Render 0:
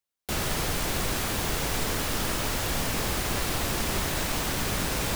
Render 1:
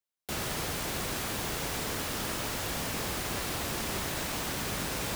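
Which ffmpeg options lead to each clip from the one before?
-af "highpass=f=79:p=1,volume=-4.5dB"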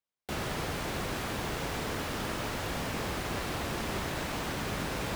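-af "highshelf=f=4.6k:g=-11.5,volume=1.5dB"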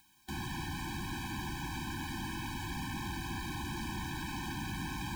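-af "asoftclip=type=tanh:threshold=-30.5dB,acompressor=mode=upward:threshold=-40dB:ratio=2.5,afftfilt=real='re*eq(mod(floor(b*sr/1024/370),2),0)':imag='im*eq(mod(floor(b*sr/1024/370),2),0)':win_size=1024:overlap=0.75"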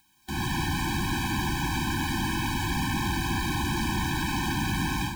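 -af "dynaudnorm=f=210:g=3:m=11dB"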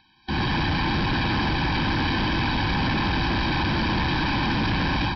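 -af "aecho=1:1:663:0.355,aresample=11025,asoftclip=type=hard:threshold=-29dB,aresample=44100,volume=8dB"

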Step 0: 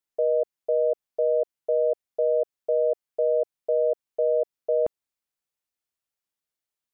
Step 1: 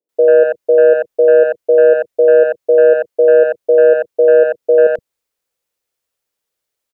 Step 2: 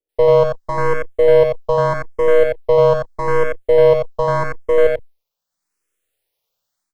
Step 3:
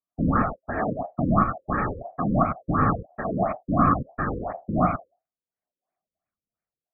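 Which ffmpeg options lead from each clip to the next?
-filter_complex "[0:a]equalizer=f=500:t=o:w=0.7:g=10.5,acontrast=82,acrossover=split=190|610[a][b][c];[c]adelay=90[d];[a]adelay=120[e];[e][b][d]amix=inputs=3:normalize=0,volume=3dB"
-filter_complex "[0:a]aeval=exprs='if(lt(val(0),0),0.251*val(0),val(0))':c=same,dynaudnorm=f=340:g=3:m=6.5dB,asplit=2[a][b];[b]afreqshift=0.82[c];[a][c]amix=inputs=2:normalize=1,volume=2dB"
-af "aeval=exprs='val(0)*sin(2*PI*690*n/s)':c=same,afftfilt=real='hypot(re,im)*cos(2*PI*random(0))':imag='hypot(re,im)*sin(2*PI*random(1))':win_size=512:overlap=0.75,afftfilt=real='re*lt(b*sr/1024,520*pow(2600/520,0.5+0.5*sin(2*PI*2.9*pts/sr)))':imag='im*lt(b*sr/1024,520*pow(2600/520,0.5+0.5*sin(2*PI*2.9*pts/sr)))':win_size=1024:overlap=0.75"

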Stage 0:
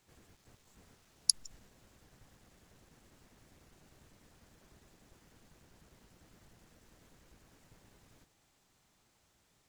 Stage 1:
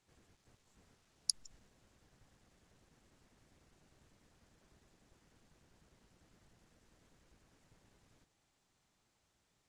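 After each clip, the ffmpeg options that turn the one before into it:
-af "lowpass=10k,volume=-6dB"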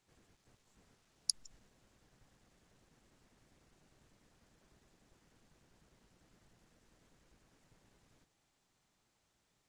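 -af "equalizer=f=79:w=3.7:g=-5.5"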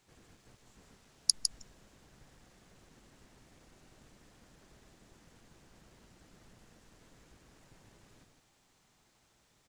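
-af "aecho=1:1:155:0.531,volume=7.5dB"

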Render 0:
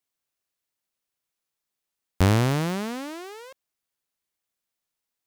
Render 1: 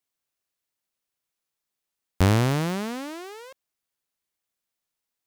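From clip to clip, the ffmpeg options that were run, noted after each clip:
-af anull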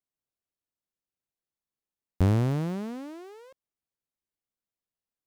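-af "tiltshelf=f=770:g=6,volume=-8dB"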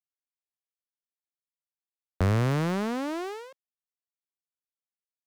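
-filter_complex "[0:a]agate=range=-33dB:threshold=-42dB:ratio=3:detection=peak,acrossover=split=170[a][b];[b]acompressor=threshold=-39dB:ratio=2.5[c];[a][c]amix=inputs=2:normalize=0,asplit=2[d][e];[e]highpass=f=720:p=1,volume=24dB,asoftclip=type=tanh:threshold=-15.5dB[f];[d][f]amix=inputs=2:normalize=0,lowpass=f=7.2k:p=1,volume=-6dB"

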